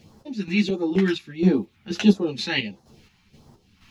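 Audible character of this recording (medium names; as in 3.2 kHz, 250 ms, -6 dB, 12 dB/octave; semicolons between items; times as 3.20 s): phasing stages 2, 1.5 Hz, lowest notch 460–2400 Hz; a quantiser's noise floor 12-bit, dither none; chopped level 2.1 Hz, depth 60%, duty 45%; a shimmering, thickened sound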